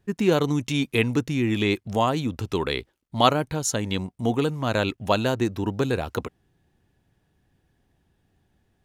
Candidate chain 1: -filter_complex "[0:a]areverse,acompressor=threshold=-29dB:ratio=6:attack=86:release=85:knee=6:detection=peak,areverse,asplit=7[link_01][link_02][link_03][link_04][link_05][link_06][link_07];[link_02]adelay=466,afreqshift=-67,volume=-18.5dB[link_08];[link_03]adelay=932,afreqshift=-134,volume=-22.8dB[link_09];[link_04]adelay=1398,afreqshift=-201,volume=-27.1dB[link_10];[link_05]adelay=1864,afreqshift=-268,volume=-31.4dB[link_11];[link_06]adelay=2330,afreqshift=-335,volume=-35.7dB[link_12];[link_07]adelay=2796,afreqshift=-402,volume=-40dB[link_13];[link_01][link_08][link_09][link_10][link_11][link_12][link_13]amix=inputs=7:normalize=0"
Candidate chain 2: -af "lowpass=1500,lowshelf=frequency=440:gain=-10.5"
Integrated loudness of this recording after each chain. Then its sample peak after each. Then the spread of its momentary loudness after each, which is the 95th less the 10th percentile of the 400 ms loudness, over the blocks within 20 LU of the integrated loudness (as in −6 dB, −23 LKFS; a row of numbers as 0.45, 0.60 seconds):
−28.5, −31.0 LKFS; −9.5, −7.5 dBFS; 6, 10 LU